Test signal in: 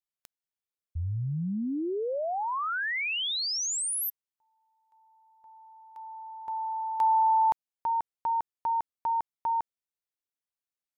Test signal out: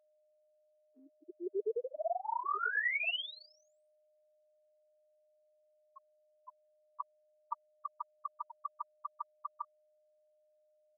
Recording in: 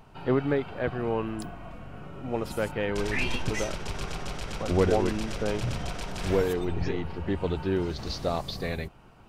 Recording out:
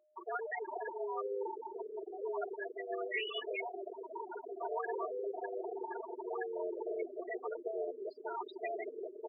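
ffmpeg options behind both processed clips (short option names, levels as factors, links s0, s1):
-filter_complex "[0:a]dynaudnorm=f=100:g=7:m=2.51,asoftclip=type=hard:threshold=0.398,afftfilt=real='re*lt(hypot(re,im),0.562)':imag='im*lt(hypot(re,im),0.562)':win_size=1024:overlap=0.75,asplit=2[s0][s1];[s1]adelay=982,lowpass=f=1000:p=1,volume=0.211,asplit=2[s2][s3];[s3]adelay=982,lowpass=f=1000:p=1,volume=0.5,asplit=2[s4][s5];[s5]adelay=982,lowpass=f=1000:p=1,volume=0.5,asplit=2[s6][s7];[s7]adelay=982,lowpass=f=1000:p=1,volume=0.5,asplit=2[s8][s9];[s9]adelay=982,lowpass=f=1000:p=1,volume=0.5[s10];[s0][s2][s4][s6][s8][s10]amix=inputs=6:normalize=0,areverse,acompressor=threshold=0.0178:ratio=12:attack=1.4:release=98:knee=1:detection=peak,areverse,aecho=1:1:4:0.87,afftfilt=real='re*gte(hypot(re,im),0.0501)':imag='im*gte(hypot(re,im),0.0501)':win_size=1024:overlap=0.75,highpass=f=170:t=q:w=0.5412,highpass=f=170:t=q:w=1.307,lowpass=f=2600:t=q:w=0.5176,lowpass=f=2600:t=q:w=0.7071,lowpass=f=2600:t=q:w=1.932,afreqshift=180,aeval=exprs='val(0)+0.000251*sin(2*PI*610*n/s)':c=same,equalizer=f=490:w=0.44:g=-5,volume=2.11"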